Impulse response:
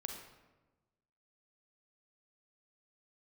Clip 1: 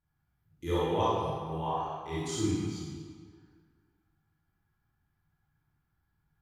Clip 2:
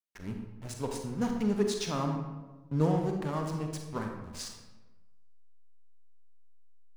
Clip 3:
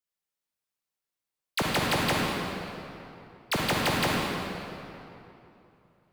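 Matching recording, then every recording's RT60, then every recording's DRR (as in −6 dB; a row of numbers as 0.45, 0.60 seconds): 2; 1.9, 1.2, 2.9 seconds; −9.5, 2.5, −3.0 decibels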